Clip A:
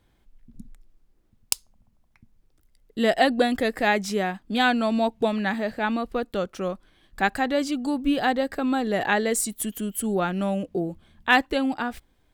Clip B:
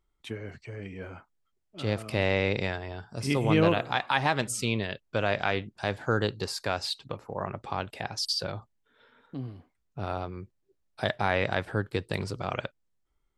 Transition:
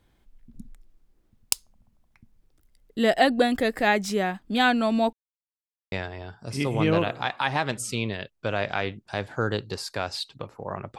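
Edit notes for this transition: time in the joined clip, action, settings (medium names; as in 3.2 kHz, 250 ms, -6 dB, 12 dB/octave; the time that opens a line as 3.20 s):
clip A
5.13–5.92 s: mute
5.92 s: go over to clip B from 2.62 s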